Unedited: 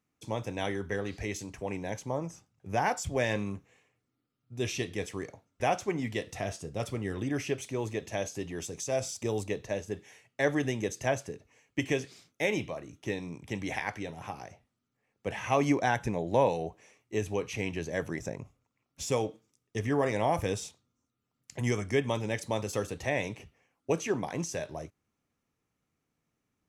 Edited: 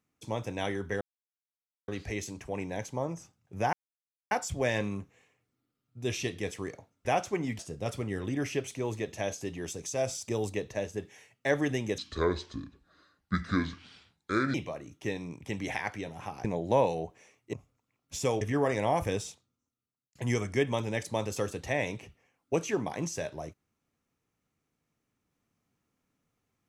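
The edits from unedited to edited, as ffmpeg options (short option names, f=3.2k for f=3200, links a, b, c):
-filter_complex "[0:a]asplit=10[a][b][c][d][e][f][g][h][i][j];[a]atrim=end=1.01,asetpts=PTS-STARTPTS,afade=t=out:st=1.006:d=0.004:c=hsin,apad=pad_dur=0.87[k];[b]atrim=start=1.01:end=2.86,asetpts=PTS-STARTPTS,afade=t=in:d=0.004:c=hsin,afade=t=out:st=1.846:d=0.004:c=hsin,apad=pad_dur=0.58[l];[c]atrim=start=2.86:end=6.142,asetpts=PTS-STARTPTS,afade=t=in:d=0.004:c=hsin[m];[d]atrim=start=6.528:end=10.924[n];[e]atrim=start=10.92:end=12.56,asetpts=PTS-STARTPTS,asetrate=28224,aresample=44100,atrim=end_sample=113006,asetpts=PTS-STARTPTS[o];[f]atrim=start=12.556:end=14.462[p];[g]atrim=start=16.068:end=17.162[q];[h]atrim=start=18.398:end=19.282[r];[i]atrim=start=19.778:end=21.52,asetpts=PTS-STARTPTS,afade=t=out:st=0.722:d=1.02[s];[j]atrim=start=21.52,asetpts=PTS-STARTPTS,afade=t=in:d=0.004:c=hsin[t];[k][l][m]concat=n=3:v=0:a=1[u];[u][n]acrossfade=d=0.004:c1=hsin:c2=hsin[v];[v][o]acrossfade=d=0.004:c1=hsin:c2=hsin[w];[w][p]acrossfade=d=0.004:c1=hsin:c2=hsin[x];[x][q]acrossfade=d=0.004:c1=hsin:c2=hsin[y];[y][r]acrossfade=d=0.004:c1=hsin:c2=hsin[z];[s][t]concat=n=2:v=0:a=1[aa];[z][aa]acrossfade=d=0.004:c1=hsin:c2=hsin"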